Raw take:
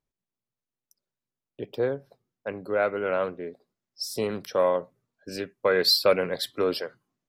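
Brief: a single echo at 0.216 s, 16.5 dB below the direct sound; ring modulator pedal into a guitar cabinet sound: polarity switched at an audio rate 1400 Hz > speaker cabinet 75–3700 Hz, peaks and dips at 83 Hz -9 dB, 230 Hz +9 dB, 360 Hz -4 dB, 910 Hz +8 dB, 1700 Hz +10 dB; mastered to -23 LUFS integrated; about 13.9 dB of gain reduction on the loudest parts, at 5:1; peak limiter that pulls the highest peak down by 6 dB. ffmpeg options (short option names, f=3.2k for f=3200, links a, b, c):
-af "acompressor=threshold=-32dB:ratio=5,alimiter=level_in=2.5dB:limit=-24dB:level=0:latency=1,volume=-2.5dB,aecho=1:1:216:0.15,aeval=exprs='val(0)*sgn(sin(2*PI*1400*n/s))':c=same,highpass=75,equalizer=f=83:t=q:w=4:g=-9,equalizer=f=230:t=q:w=4:g=9,equalizer=f=360:t=q:w=4:g=-4,equalizer=f=910:t=q:w=4:g=8,equalizer=f=1.7k:t=q:w=4:g=10,lowpass=f=3.7k:w=0.5412,lowpass=f=3.7k:w=1.3066,volume=9.5dB"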